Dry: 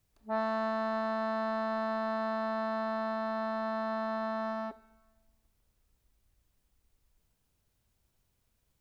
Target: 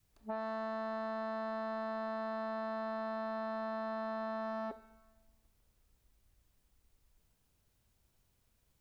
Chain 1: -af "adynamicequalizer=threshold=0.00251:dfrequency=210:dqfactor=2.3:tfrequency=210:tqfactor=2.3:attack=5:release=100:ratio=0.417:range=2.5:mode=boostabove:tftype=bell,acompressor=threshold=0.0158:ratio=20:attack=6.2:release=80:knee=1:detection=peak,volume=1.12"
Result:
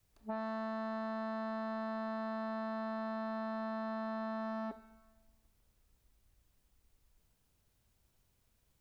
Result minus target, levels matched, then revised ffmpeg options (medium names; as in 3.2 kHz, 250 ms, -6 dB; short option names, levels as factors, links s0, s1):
250 Hz band +4.0 dB
-af "adynamicequalizer=threshold=0.00251:dfrequency=490:dqfactor=2.3:tfrequency=490:tqfactor=2.3:attack=5:release=100:ratio=0.417:range=2.5:mode=boostabove:tftype=bell,acompressor=threshold=0.0158:ratio=20:attack=6.2:release=80:knee=1:detection=peak,volume=1.12"